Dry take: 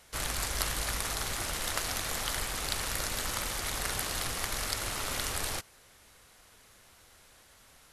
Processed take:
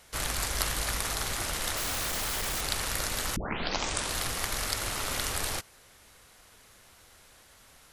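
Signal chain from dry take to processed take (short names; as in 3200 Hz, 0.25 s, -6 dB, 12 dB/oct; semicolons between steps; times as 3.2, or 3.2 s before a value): 1.77–2.61 infinite clipping; 3.36 tape start 0.80 s; gain +2 dB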